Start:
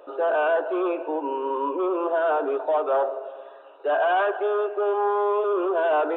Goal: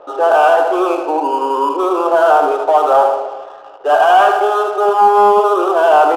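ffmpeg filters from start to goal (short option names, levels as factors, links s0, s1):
-filter_complex "[0:a]equalizer=f=800:t=o:w=0.33:g=10,equalizer=f=1250:t=o:w=0.33:g=7,equalizer=f=3150:t=o:w=0.33:g=8,aecho=1:1:78|156|234|312|390|468:0.473|0.222|0.105|0.0491|0.0231|0.0109,apsyclip=3.16,acrossover=split=690[s0][s1];[s1]adynamicsmooth=sensitivity=7:basefreq=1000[s2];[s0][s2]amix=inputs=2:normalize=0,volume=0.708"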